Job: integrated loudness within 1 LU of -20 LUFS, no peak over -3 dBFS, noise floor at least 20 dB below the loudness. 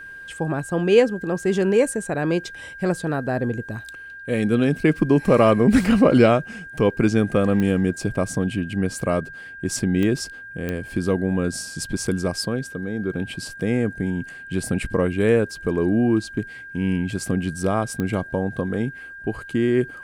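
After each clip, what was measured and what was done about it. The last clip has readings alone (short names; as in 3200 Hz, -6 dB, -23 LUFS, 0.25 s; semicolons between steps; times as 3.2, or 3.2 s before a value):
clicks 4; steady tone 1600 Hz; tone level -36 dBFS; loudness -22.0 LUFS; peak -3.5 dBFS; loudness target -20.0 LUFS
-> de-click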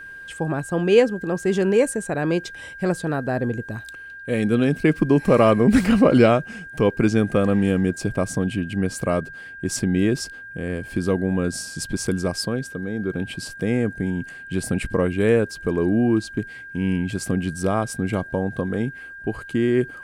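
clicks 0; steady tone 1600 Hz; tone level -36 dBFS
-> notch 1600 Hz, Q 30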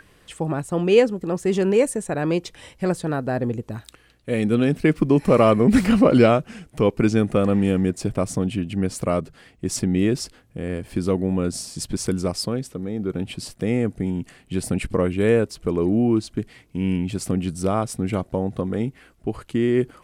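steady tone none; loudness -22.0 LUFS; peak -4.0 dBFS; loudness target -20.0 LUFS
-> gain +2 dB; limiter -3 dBFS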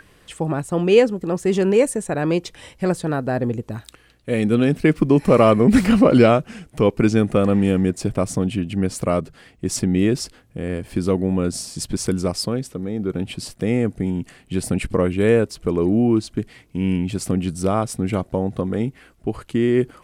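loudness -20.0 LUFS; peak -3.0 dBFS; noise floor -54 dBFS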